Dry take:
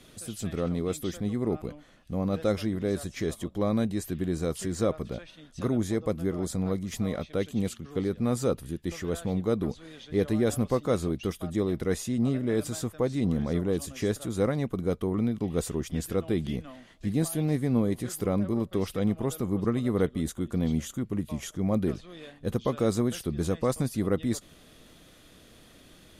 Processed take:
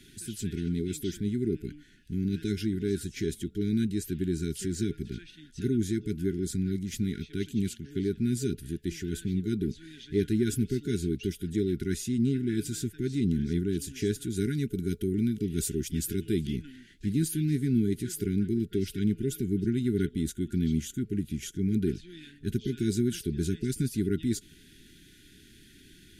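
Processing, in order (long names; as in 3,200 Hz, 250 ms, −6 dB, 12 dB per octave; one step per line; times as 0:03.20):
0:14.36–0:16.47: high-shelf EQ 6,700 Hz +9 dB
brick-wall band-stop 430–1,400 Hz
dynamic equaliser 1,800 Hz, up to −6 dB, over −58 dBFS, Q 3.7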